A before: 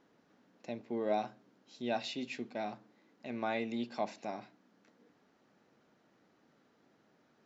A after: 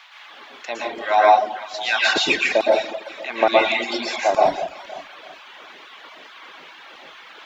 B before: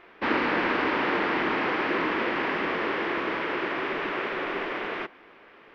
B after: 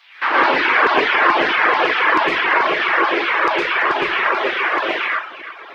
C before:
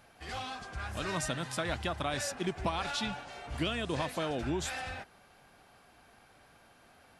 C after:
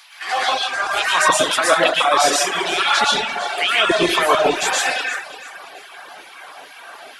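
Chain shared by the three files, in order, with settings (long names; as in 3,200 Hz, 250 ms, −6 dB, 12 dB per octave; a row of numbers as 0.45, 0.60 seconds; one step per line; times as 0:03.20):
auto-filter high-pass saw down 2.3 Hz 440–4,800 Hz
parametric band 160 Hz +4.5 dB 0.76 octaves
noise in a band 800–3,600 Hz −66 dBFS
in parallel at +1.5 dB: downward compressor, threshold −34 dBFS
on the sum: parametric band 330 Hz +6 dB 0.3 octaves
on a send: delay that swaps between a low-pass and a high-pass 169 ms, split 1,000 Hz, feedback 57%, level −7.5 dB
on the sum: dense smooth reverb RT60 0.72 s, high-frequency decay 0.75×, pre-delay 100 ms, DRR −4.5 dB
reverb reduction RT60 0.79 s
normalise the peak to −2 dBFS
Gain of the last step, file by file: +11.5, +3.0, +9.0 decibels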